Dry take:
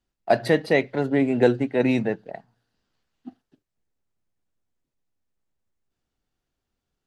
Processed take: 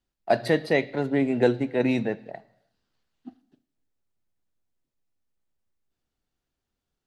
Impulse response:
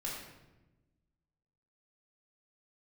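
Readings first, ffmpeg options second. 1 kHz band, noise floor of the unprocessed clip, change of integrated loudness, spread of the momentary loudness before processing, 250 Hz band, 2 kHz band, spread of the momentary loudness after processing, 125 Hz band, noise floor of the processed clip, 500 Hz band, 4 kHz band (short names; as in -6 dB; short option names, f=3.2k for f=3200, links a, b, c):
-2.5 dB, -83 dBFS, -2.5 dB, 8 LU, -2.5 dB, -2.5 dB, 8 LU, -2.5 dB, -85 dBFS, -2.5 dB, -1.5 dB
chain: -filter_complex "[0:a]asplit=2[a][b];[b]equalizer=f=4k:t=o:w=0.99:g=12[c];[1:a]atrim=start_sample=2205,afade=t=out:st=0.41:d=0.01,atrim=end_sample=18522[d];[c][d]afir=irnorm=-1:irlink=0,volume=-20dB[e];[a][e]amix=inputs=2:normalize=0,volume=-3dB"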